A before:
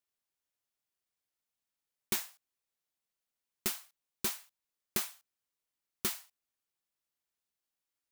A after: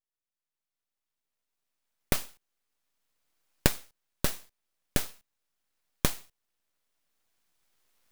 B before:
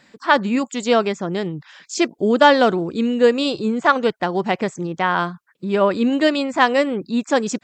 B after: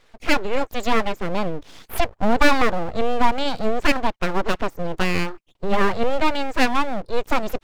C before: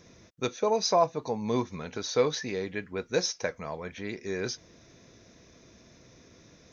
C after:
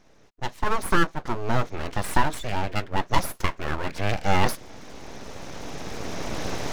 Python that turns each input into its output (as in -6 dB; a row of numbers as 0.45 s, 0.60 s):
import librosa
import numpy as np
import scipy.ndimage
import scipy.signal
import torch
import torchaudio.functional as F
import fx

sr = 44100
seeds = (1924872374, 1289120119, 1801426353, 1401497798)

y = fx.recorder_agc(x, sr, target_db=-6.5, rise_db_per_s=7.9, max_gain_db=30)
y = fx.high_shelf(y, sr, hz=3200.0, db=-10.0)
y = np.abs(y)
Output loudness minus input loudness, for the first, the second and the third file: +4.0 LU, -4.0 LU, +2.5 LU